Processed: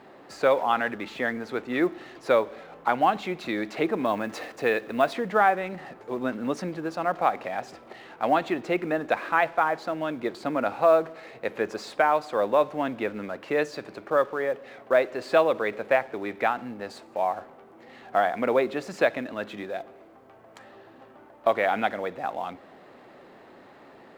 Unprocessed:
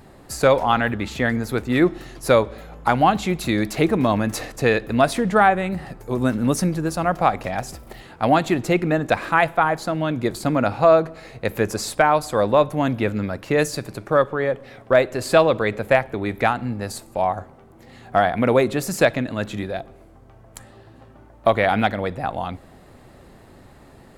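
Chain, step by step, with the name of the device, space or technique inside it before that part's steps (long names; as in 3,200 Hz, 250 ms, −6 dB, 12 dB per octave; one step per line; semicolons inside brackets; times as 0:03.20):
phone line with mismatched companding (band-pass filter 310–3,200 Hz; mu-law and A-law mismatch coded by mu)
0:04.05–0:05.13: high-shelf EQ 10,000 Hz +9.5 dB
level −5 dB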